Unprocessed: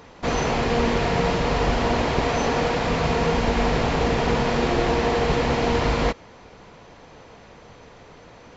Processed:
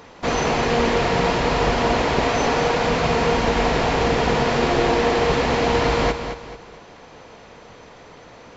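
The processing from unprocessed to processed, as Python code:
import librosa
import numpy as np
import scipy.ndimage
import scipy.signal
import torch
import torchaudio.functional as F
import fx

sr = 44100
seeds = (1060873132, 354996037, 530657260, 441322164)

p1 = fx.low_shelf(x, sr, hz=180.0, db=-5.5)
p2 = p1 + fx.echo_feedback(p1, sr, ms=219, feedback_pct=35, wet_db=-9.0, dry=0)
y = p2 * 10.0 ** (3.0 / 20.0)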